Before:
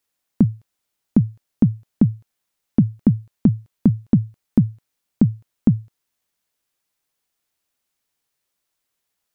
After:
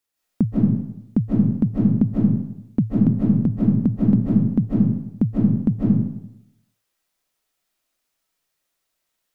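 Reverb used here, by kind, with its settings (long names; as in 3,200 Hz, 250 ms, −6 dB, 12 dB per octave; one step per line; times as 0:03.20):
comb and all-pass reverb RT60 0.82 s, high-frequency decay 0.75×, pre-delay 115 ms, DRR −6.5 dB
level −4.5 dB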